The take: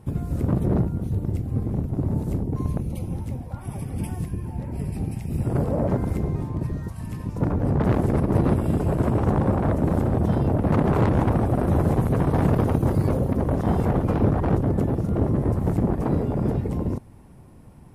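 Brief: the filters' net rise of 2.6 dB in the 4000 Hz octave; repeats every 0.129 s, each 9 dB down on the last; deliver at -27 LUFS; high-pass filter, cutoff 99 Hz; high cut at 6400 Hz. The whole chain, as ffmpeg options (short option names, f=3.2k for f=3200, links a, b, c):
-af "highpass=99,lowpass=6.4k,equalizer=f=4k:t=o:g=4,aecho=1:1:129|258|387|516:0.355|0.124|0.0435|0.0152,volume=-2.5dB"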